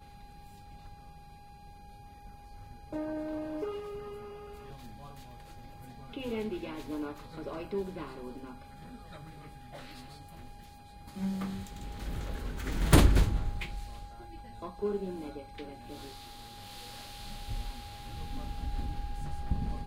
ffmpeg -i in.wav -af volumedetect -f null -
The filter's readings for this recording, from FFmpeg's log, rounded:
mean_volume: -35.0 dB
max_volume: -6.3 dB